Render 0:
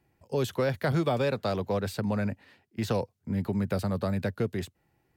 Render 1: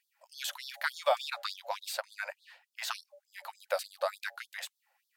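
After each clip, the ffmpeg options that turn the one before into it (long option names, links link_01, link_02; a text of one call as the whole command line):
ffmpeg -i in.wav -af "bandreject=frequency=115.9:width_type=h:width=4,bandreject=frequency=231.8:width_type=h:width=4,bandreject=frequency=347.7:width_type=h:width=4,bandreject=frequency=463.6:width_type=h:width=4,bandreject=frequency=579.5:width_type=h:width=4,bandreject=frequency=695.4:width_type=h:width=4,bandreject=frequency=811.3:width_type=h:width=4,afftfilt=real='re*gte(b*sr/1024,480*pow(3400/480,0.5+0.5*sin(2*PI*3.4*pts/sr)))':imag='im*gte(b*sr/1024,480*pow(3400/480,0.5+0.5*sin(2*PI*3.4*pts/sr)))':win_size=1024:overlap=0.75,volume=3.5dB" out.wav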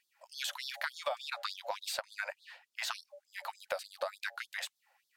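ffmpeg -i in.wav -af "highshelf=frequency=12000:gain=-8.5,acompressor=threshold=-37dB:ratio=5,volume=3.5dB" out.wav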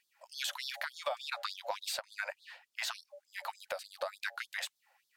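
ffmpeg -i in.wav -af "alimiter=limit=-23dB:level=0:latency=1:release=270,volume=1dB" out.wav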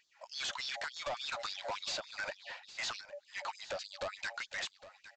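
ffmpeg -i in.wav -af "aresample=16000,asoftclip=type=tanh:threshold=-39.5dB,aresample=44100,aecho=1:1:810:0.168,volume=5.5dB" out.wav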